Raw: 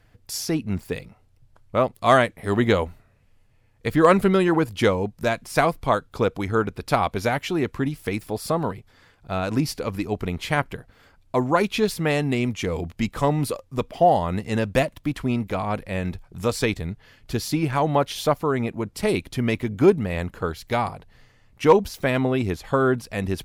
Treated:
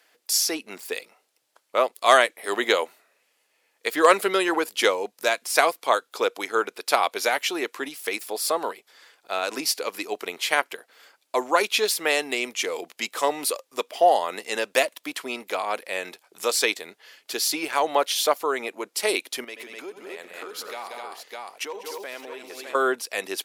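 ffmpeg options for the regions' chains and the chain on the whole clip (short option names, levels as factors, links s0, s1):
-filter_complex "[0:a]asettb=1/sr,asplit=3[s0][s1][s2];[s0]atrim=end=19.444[s3];[s1]atrim=start=19.44:end=22.75,asetpts=PTS-STARTPTS,afade=t=in:d=0.004:c=qsin,afade=t=out:st=3.306:d=0.004:c=qsin,aecho=1:1:81|85|186|254|608:0.1|0.133|0.251|0.355|0.316,atrim=end_sample=145971,acompressor=threshold=0.0282:ratio=6:attack=3.2:release=140:knee=1:detection=peak[s4];[s2]atrim=start=22.746[s5];[s3][s4]acrossfade=d=0.004:c1=hsin:c2=qsin[s6];[s6][s5]acrossfade=d=0.004:c1=qsin:c2=hsin,highpass=f=370:w=0.5412,highpass=f=370:w=1.3066,highshelf=f=2200:g=11,volume=0.841"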